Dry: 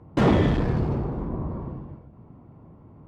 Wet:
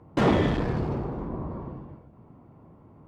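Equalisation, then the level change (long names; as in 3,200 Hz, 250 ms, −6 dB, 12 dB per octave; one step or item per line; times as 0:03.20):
low-shelf EQ 220 Hz −6 dB
0.0 dB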